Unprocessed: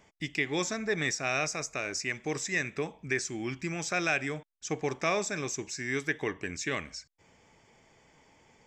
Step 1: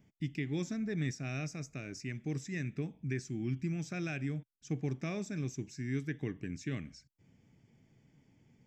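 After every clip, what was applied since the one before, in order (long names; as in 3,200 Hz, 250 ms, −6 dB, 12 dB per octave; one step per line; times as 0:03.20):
octave-band graphic EQ 125/250/500/1,000/2,000/4,000/8,000 Hz +11/+7/−6/−12/−4/−5/−9 dB
level −6 dB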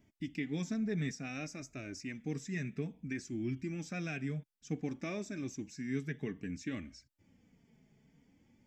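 flanger 0.57 Hz, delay 3 ms, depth 1.9 ms, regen −20%
level +3 dB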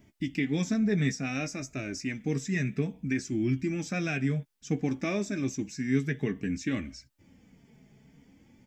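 double-tracking delay 15 ms −11.5 dB
level +8.5 dB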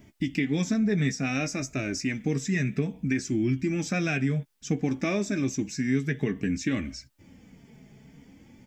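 downward compressor 2 to 1, threshold −31 dBFS, peak gain reduction 6.5 dB
level +6 dB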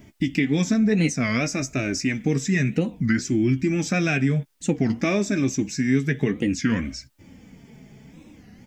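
wow of a warped record 33 1/3 rpm, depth 250 cents
level +5 dB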